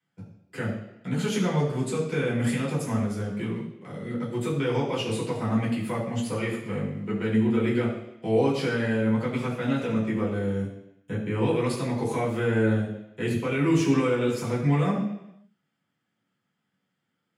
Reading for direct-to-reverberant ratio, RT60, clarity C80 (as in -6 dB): -8.5 dB, 0.85 s, 7.0 dB